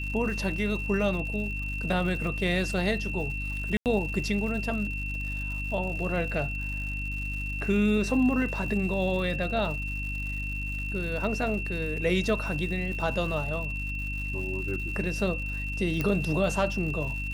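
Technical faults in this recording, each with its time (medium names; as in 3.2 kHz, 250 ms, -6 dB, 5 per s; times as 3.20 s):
crackle 170 per s -37 dBFS
hum 50 Hz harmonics 6 -34 dBFS
whine 2.7 kHz -34 dBFS
3.77–3.86 s: dropout 88 ms
16.01 s: pop -14 dBFS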